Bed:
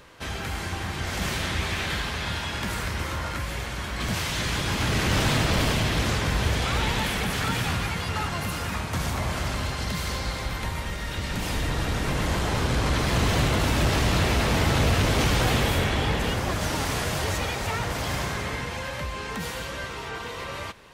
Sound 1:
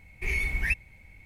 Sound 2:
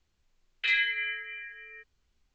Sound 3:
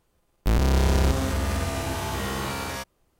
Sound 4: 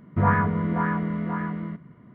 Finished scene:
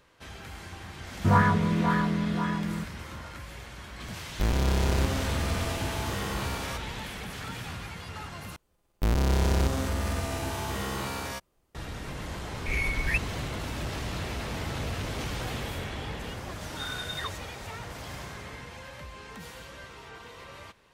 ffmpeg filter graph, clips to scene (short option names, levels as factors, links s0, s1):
-filter_complex "[3:a]asplit=2[s0][s1];[1:a]asplit=2[s2][s3];[0:a]volume=0.266[s4];[s3]lowpass=f=3100:t=q:w=0.5098,lowpass=f=3100:t=q:w=0.6013,lowpass=f=3100:t=q:w=0.9,lowpass=f=3100:t=q:w=2.563,afreqshift=-3700[s5];[s4]asplit=2[s6][s7];[s6]atrim=end=8.564[s8];[s1]atrim=end=3.19,asetpts=PTS-STARTPTS,volume=0.668[s9];[s7]atrim=start=11.746[s10];[4:a]atrim=end=2.14,asetpts=PTS-STARTPTS,volume=0.944,afade=t=in:d=0.004:c=hsin,afade=t=out:st=2.136:d=0.004:c=hsin,adelay=1080[s11];[s0]atrim=end=3.19,asetpts=PTS-STARTPTS,volume=0.596,afade=t=in:d=0.004:c=hsin,afade=t=out:st=3.186:d=0.004:c=hsin,adelay=3940[s12];[s2]atrim=end=1.25,asetpts=PTS-STARTPTS,volume=0.891,afade=t=in:d=0.004:c=hsin,afade=t=out:st=1.246:d=0.004:c=hsin,adelay=12440[s13];[s5]atrim=end=1.25,asetpts=PTS-STARTPTS,volume=0.316,afade=t=in:d=0.004:c=hsin,afade=t=out:st=1.246:d=0.004:c=hsin,adelay=16540[s14];[s8][s9]acrossfade=d=0.004:c1=hsin:c2=hsin[s15];[s15][s10]acrossfade=d=0.004:c1=hsin:c2=hsin[s16];[s16][s11][s12][s13][s14]amix=inputs=5:normalize=0"